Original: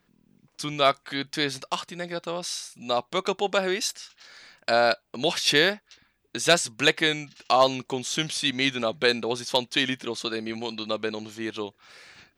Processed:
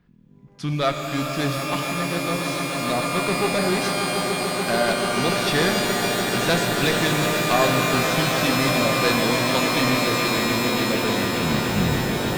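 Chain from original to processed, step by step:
turntable brake at the end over 1.27 s
bass and treble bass +13 dB, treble −10 dB
echo that builds up and dies away 145 ms, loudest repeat 8, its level −13 dB
asymmetric clip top −20 dBFS
reverb with rising layers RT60 3.5 s, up +12 semitones, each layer −2 dB, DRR 4.5 dB

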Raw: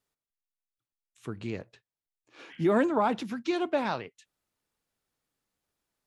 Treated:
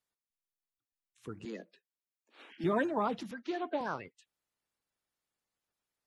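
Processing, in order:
spectral magnitudes quantised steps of 30 dB
0:01.45–0:02.64: Butterworth high-pass 170 Hz 96 dB per octave
0:03.31–0:03.81: three-way crossover with the lows and the highs turned down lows −12 dB, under 250 Hz, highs −23 dB, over 4,800 Hz
level −5.5 dB

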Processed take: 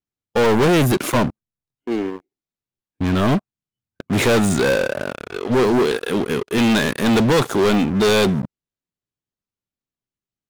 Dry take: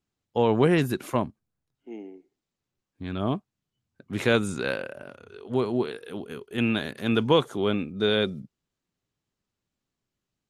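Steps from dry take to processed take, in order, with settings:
de-essing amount 75%
leveller curve on the samples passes 5
soft clipping −11.5 dBFS, distortion −20 dB

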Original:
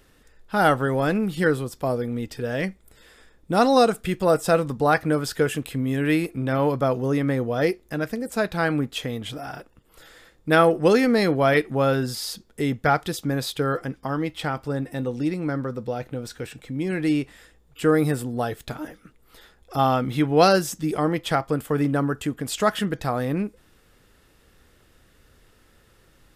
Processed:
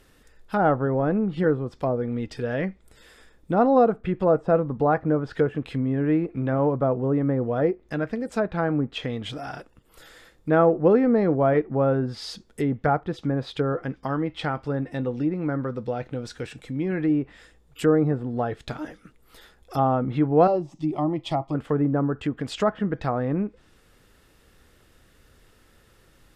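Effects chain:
0:20.47–0:21.55: phaser with its sweep stopped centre 310 Hz, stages 8
treble cut that deepens with the level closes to 1,000 Hz, closed at −19.5 dBFS

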